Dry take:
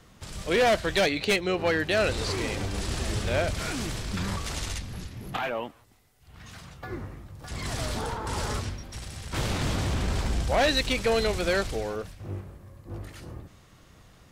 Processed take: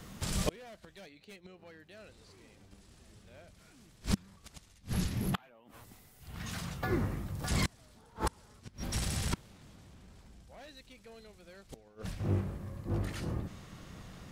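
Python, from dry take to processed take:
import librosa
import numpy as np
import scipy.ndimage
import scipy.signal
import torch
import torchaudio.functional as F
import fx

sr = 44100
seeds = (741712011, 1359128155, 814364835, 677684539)

y = fx.high_shelf(x, sr, hz=10000.0, db=fx.steps((0.0, 8.5), (11.75, -4.0)))
y = fx.gate_flip(y, sr, shuts_db=-22.0, range_db=-33)
y = fx.peak_eq(y, sr, hz=190.0, db=6.0, octaves=0.78)
y = F.gain(torch.from_numpy(y), 3.5).numpy()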